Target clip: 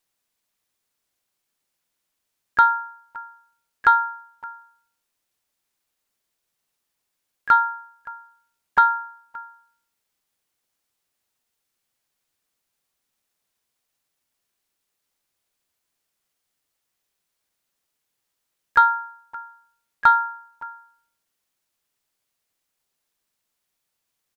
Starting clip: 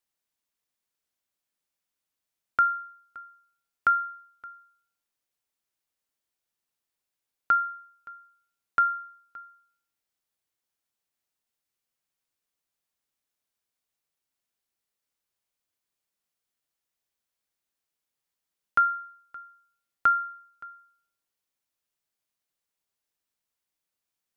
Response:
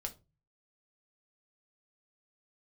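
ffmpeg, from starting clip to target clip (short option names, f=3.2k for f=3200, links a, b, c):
-filter_complex "[0:a]asplit=3[a][b][c];[b]asetrate=29433,aresample=44100,atempo=1.49831,volume=-4dB[d];[c]asetrate=52444,aresample=44100,atempo=0.840896,volume=-17dB[e];[a][d][e]amix=inputs=3:normalize=0,acontrast=53"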